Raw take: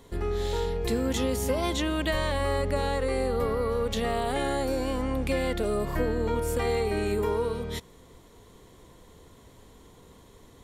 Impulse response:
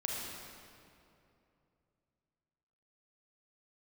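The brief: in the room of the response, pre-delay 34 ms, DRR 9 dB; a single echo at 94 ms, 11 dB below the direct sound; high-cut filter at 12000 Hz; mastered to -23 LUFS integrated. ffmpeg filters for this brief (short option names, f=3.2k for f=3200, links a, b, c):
-filter_complex "[0:a]lowpass=12k,aecho=1:1:94:0.282,asplit=2[a][b];[1:a]atrim=start_sample=2205,adelay=34[c];[b][c]afir=irnorm=-1:irlink=0,volume=-12.5dB[d];[a][d]amix=inputs=2:normalize=0,volume=4dB"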